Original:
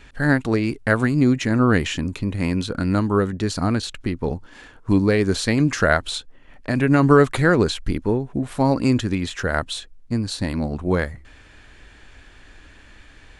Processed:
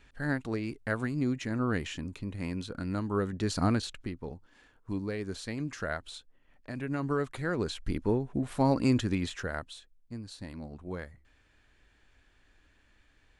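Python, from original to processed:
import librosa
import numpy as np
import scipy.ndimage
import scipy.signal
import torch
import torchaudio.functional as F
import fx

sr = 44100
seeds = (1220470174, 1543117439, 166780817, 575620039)

y = fx.gain(x, sr, db=fx.line((2.99, -13.0), (3.66, -5.0), (4.32, -17.0), (7.39, -17.0), (8.04, -7.0), (9.24, -7.0), (9.75, -18.0)))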